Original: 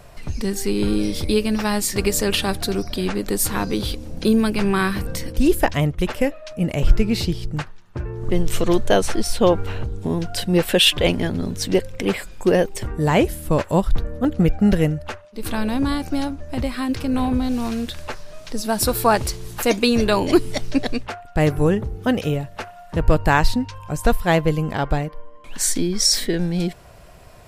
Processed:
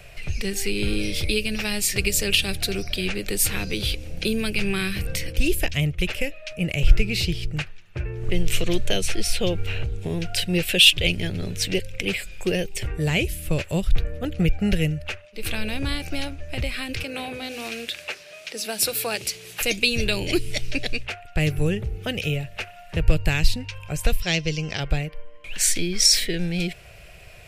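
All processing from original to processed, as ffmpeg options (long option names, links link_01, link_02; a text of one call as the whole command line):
ffmpeg -i in.wav -filter_complex "[0:a]asettb=1/sr,asplit=3[link_01][link_02][link_03];[link_01]atrim=end=17.034[link_04];[link_02]atrim=start=17.03:end=19.61,asetpts=PTS-STARTPTS,afade=type=in:duration=0.004:curve=qsin,afade=type=out:start_time=2.576:duration=0.004:curve=qsin,highpass=250,bandreject=frequency=50:width_type=h:width=6,bandreject=frequency=100:width_type=h:width=6,bandreject=frequency=150:width_type=h:width=6,bandreject=frequency=200:width_type=h:width=6,bandreject=frequency=250:width_type=h:width=6,bandreject=frequency=300:width_type=h:width=6,bandreject=frequency=350:width_type=h:width=6,bandreject=frequency=400:width_type=h:width=6[link_05];[link_03]atrim=start=19.606[link_06];[link_04][link_05]acrossfade=duration=0.004:curve1=hsin:curve2=qsin[link_07];[link_07][link_06]acrossfade=duration=0.004:curve1=qsin:curve2=hsin,asettb=1/sr,asplit=3[link_08][link_09][link_10];[link_08]atrim=end=24.224[link_11];[link_09]atrim=start=24.22:end=24.8,asetpts=PTS-STARTPTS,afade=type=in:duration=0.004:curve=qsin,afade=type=out:start_time=0.576:duration=0.004:curve=qsin,lowpass=frequency=5600:width_type=q:width=9.3,lowshelf=frequency=140:gain=-6.5[link_12];[link_10]atrim=start=24.796[link_13];[link_11][link_12]acrossfade=duration=0.004:curve1=hsin:curve2=qsin[link_14];[link_14][link_13]acrossfade=duration=0.004:curve1=qsin:curve2=hsin,equalizer=frequency=250:width_type=o:width=0.67:gain=-12,equalizer=frequency=1000:width_type=o:width=0.67:gain=-11,equalizer=frequency=2500:width_type=o:width=0.67:gain=12,acrossover=split=350|3000[link_15][link_16][link_17];[link_16]acompressor=threshold=-31dB:ratio=4[link_18];[link_15][link_18][link_17]amix=inputs=3:normalize=0" out.wav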